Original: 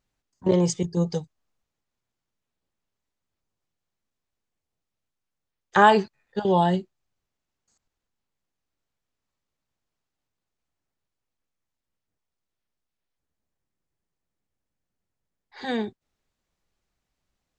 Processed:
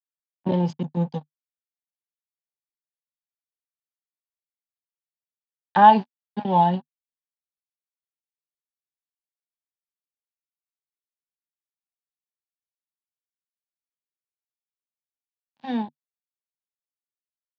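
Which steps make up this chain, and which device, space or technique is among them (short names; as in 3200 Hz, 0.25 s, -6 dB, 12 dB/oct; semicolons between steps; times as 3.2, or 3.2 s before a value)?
blown loudspeaker (crossover distortion -35 dBFS; speaker cabinet 150–3800 Hz, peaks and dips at 150 Hz +8 dB, 240 Hz +9 dB, 410 Hz -10 dB, 860 Hz +9 dB, 1300 Hz -9 dB, 2100 Hz -7 dB); gain -1 dB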